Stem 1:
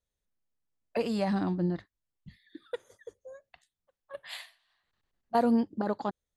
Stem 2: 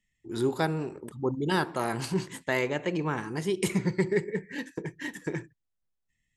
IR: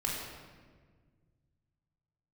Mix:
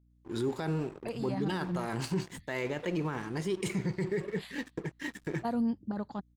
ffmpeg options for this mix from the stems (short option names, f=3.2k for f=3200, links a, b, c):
-filter_complex "[0:a]asubboost=boost=4.5:cutoff=190,adelay=100,volume=-7.5dB[a];[1:a]lowpass=9.5k,lowshelf=f=240:g=2.5,aeval=exprs='sgn(val(0))*max(abs(val(0))-0.00447,0)':c=same,volume=-1dB[b];[a][b]amix=inputs=2:normalize=0,aeval=exprs='val(0)+0.000631*(sin(2*PI*60*n/s)+sin(2*PI*2*60*n/s)/2+sin(2*PI*3*60*n/s)/3+sin(2*PI*4*60*n/s)/4+sin(2*PI*5*60*n/s)/5)':c=same,alimiter=limit=-23.5dB:level=0:latency=1:release=14"